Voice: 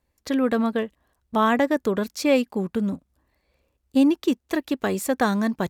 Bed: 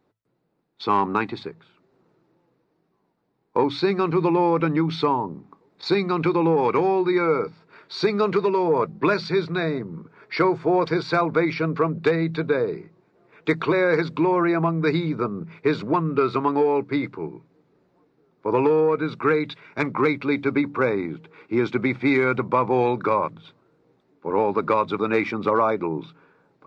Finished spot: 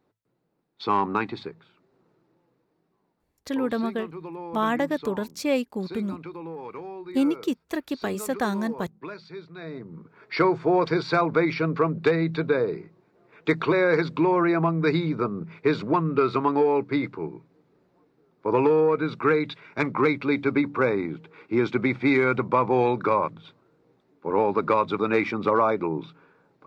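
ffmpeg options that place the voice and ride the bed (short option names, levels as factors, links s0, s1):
-filter_complex "[0:a]adelay=3200,volume=0.596[s0];[1:a]volume=5.01,afade=t=out:st=3.16:d=0.32:silence=0.177828,afade=t=in:st=9.56:d=0.82:silence=0.149624[s1];[s0][s1]amix=inputs=2:normalize=0"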